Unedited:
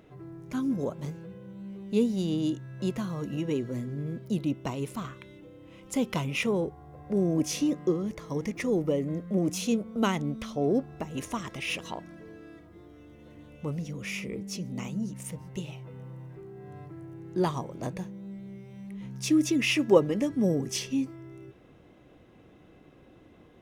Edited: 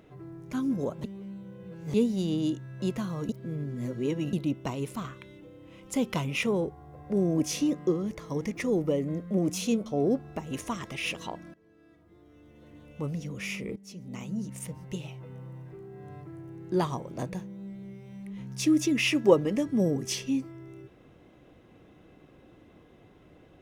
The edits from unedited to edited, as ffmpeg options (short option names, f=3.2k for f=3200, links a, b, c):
-filter_complex "[0:a]asplit=8[a][b][c][d][e][f][g][h];[a]atrim=end=1.042[i];[b]atrim=start=1.038:end=1.942,asetpts=PTS-STARTPTS,areverse[j];[c]atrim=start=1.938:end=3.292[k];[d]atrim=start=3.288:end=4.332,asetpts=PTS-STARTPTS,areverse[l];[e]atrim=start=4.328:end=9.862[m];[f]atrim=start=10.498:end=12.18,asetpts=PTS-STARTPTS,afade=t=out:st=1.678:d=0.004:c=hsin:silence=0.1[n];[g]atrim=start=12.18:end=14.4,asetpts=PTS-STARTPTS,afade=t=in:d=1.48:silence=0.1,afade=t=out:st=2.216:d=0.004:c=hsin:silence=0.149624[o];[h]atrim=start=14.4,asetpts=PTS-STARTPTS,afade=t=in:d=0.7:silence=0.149624[p];[i][j]acrossfade=d=0.004:c1=hsin:c2=hsin[q];[q][k]acrossfade=d=0.004:c1=hsin:c2=hsin[r];[r][l]acrossfade=d=0.004:c1=hsin:c2=hsin[s];[s][m]acrossfade=d=0.004:c1=hsin:c2=hsin[t];[n][o][p]concat=n=3:v=0:a=1[u];[t][u]acrossfade=d=0.004:c1=hsin:c2=hsin"